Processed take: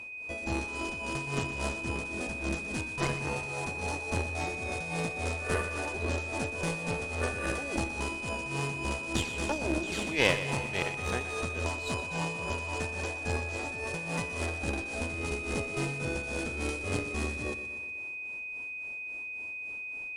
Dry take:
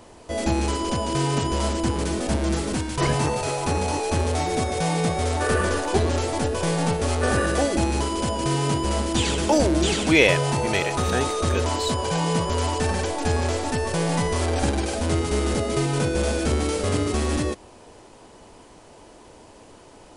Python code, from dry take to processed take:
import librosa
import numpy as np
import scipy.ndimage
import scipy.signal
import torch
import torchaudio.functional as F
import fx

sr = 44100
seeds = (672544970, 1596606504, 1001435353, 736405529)

y = x * (1.0 - 0.75 / 2.0 + 0.75 / 2.0 * np.cos(2.0 * np.pi * 3.6 * (np.arange(len(x)) / sr)))
y = fx.cheby_harmonics(y, sr, harmonics=(3, 4), levels_db=(-21, -13), full_scale_db=-3.5)
y = y + 10.0 ** (-34.0 / 20.0) * np.sin(2.0 * np.pi * 2500.0 * np.arange(len(y)) / sr)
y = fx.echo_feedback(y, sr, ms=122, feedback_pct=59, wet_db=-12)
y = y * 10.0 ** (-6.5 / 20.0)